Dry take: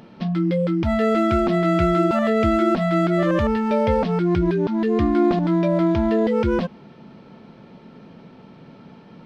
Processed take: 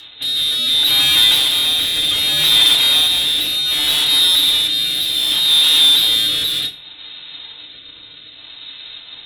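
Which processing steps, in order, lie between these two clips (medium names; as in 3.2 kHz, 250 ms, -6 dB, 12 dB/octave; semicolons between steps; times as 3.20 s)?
square wave that keeps the level; frequency inversion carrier 3.9 kHz; hard clipper -18 dBFS, distortion -7 dB; FDN reverb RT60 0.3 s, low-frequency decay 1.4×, high-frequency decay 0.85×, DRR -0.5 dB; rotary cabinet horn 0.65 Hz; trim +4 dB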